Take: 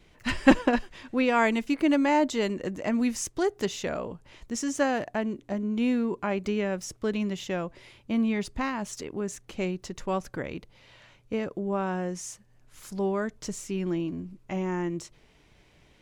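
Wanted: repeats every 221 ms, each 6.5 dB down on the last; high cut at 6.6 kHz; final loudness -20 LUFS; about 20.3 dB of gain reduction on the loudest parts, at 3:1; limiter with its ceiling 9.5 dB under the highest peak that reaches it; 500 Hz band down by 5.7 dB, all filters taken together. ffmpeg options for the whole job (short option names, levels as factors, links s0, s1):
-af "lowpass=6600,equalizer=f=500:t=o:g=-7.5,acompressor=threshold=0.00794:ratio=3,alimiter=level_in=2.82:limit=0.0631:level=0:latency=1,volume=0.355,aecho=1:1:221|442|663|884|1105|1326:0.473|0.222|0.105|0.0491|0.0231|0.0109,volume=14.1"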